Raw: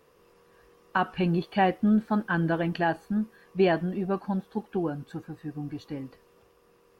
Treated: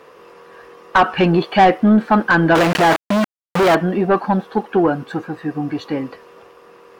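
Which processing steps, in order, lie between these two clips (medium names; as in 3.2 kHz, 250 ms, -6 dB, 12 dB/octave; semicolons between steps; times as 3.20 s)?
2.55–3.75 s: companded quantiser 2-bit; overdrive pedal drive 28 dB, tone 1.7 kHz, clips at 0 dBFS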